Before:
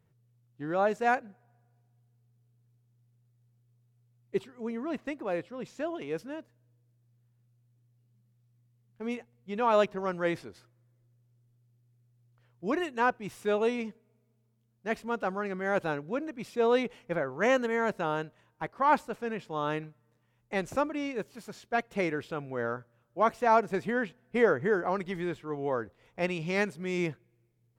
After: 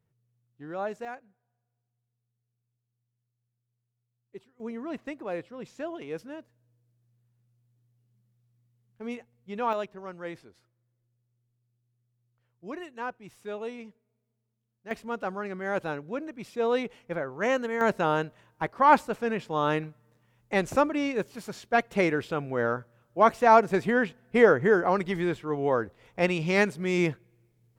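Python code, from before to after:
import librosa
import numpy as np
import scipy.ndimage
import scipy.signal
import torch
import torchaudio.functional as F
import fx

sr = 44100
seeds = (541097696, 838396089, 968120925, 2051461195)

y = fx.gain(x, sr, db=fx.steps((0.0, -6.0), (1.05, -14.0), (4.6, -1.5), (9.73, -8.5), (14.91, -1.0), (17.81, 5.5)))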